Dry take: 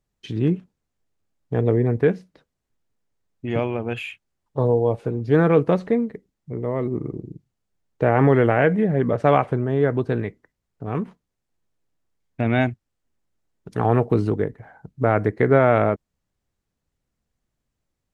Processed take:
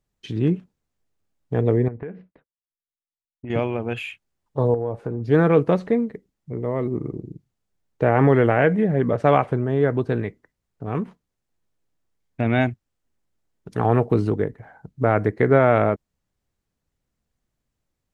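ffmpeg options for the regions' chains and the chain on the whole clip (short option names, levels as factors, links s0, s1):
-filter_complex "[0:a]asettb=1/sr,asplit=3[s0][s1][s2];[s0]atrim=end=1.884[s3];[s1]atrim=start=1.88:end=3.5,asetpts=PTS-STARTPTS,afade=t=in:d=0.004:c=qsin,afade=t=out:st=1.616:d=0.004:c=qsin,agate=range=0.0224:threshold=0.002:ratio=3:release=100:detection=peak,lowpass=f=2500:w=0.5412,lowpass=f=2500:w=1.3066,acompressor=threshold=0.0316:ratio=6:attack=3.2:release=140:knee=1:detection=peak[s4];[s2]atrim=start=3.496[s5];[s3][s4]acrossfade=d=0.004:c1=hsin:c2=qsin[s6];[s6][s5]acrossfade=d=0.004:c1=qsin:c2=hsin,asettb=1/sr,asplit=3[s7][s8][s9];[s7]atrim=end=4.744[s10];[s8]atrim=start=4.74:end=5.23,asetpts=PTS-STARTPTS,afade=t=in:d=0.004:c=qsin,afade=t=out:st=0.486:d=0.004:c=qsin,highshelf=f=2100:t=q:w=1.5:g=-6.5,acompressor=threshold=0.0794:ratio=3:attack=3.2:release=140:knee=1:detection=peak[s11];[s9]atrim=start=5.226[s12];[s10][s11]acrossfade=d=0.004:c1=hsin:c2=qsin[s13];[s13][s12]acrossfade=d=0.004:c1=qsin:c2=hsin"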